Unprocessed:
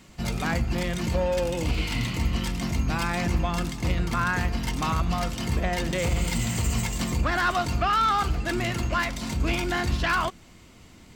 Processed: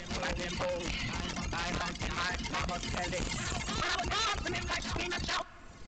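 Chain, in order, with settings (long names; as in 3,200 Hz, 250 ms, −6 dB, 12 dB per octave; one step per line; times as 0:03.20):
tempo change 1.9×
background noise brown −42 dBFS
in parallel at +2 dB: downward compressor 20 to 1, threshold −33 dBFS, peak gain reduction 14.5 dB
on the sum: reverb reduction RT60 1.2 s
on a send at −22 dB: convolution reverb RT60 3.4 s, pre-delay 5 ms
on the sum: wrap-around overflow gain 17 dB
low-shelf EQ 490 Hz −8.5 dB
soft clipping −25.5 dBFS, distortion −10 dB
backwards echo 440 ms −8 dB
level −3 dB
A-law companding 128 kbit/s 16,000 Hz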